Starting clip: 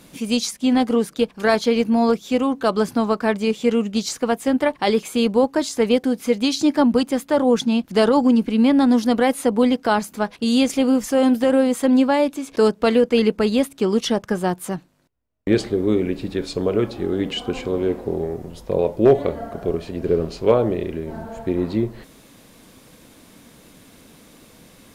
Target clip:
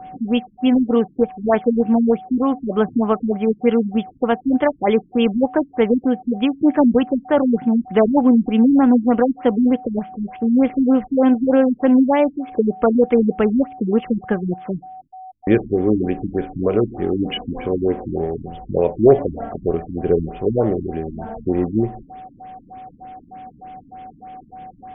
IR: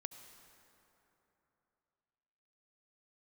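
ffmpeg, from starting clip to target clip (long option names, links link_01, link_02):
-af "aeval=exprs='val(0)+0.0158*sin(2*PI*750*n/s)':channel_layout=same,afftfilt=real='re*lt(b*sr/1024,310*pow(3600/310,0.5+0.5*sin(2*PI*3.3*pts/sr)))':imag='im*lt(b*sr/1024,310*pow(3600/310,0.5+0.5*sin(2*PI*3.3*pts/sr)))':win_size=1024:overlap=0.75,volume=2.5dB"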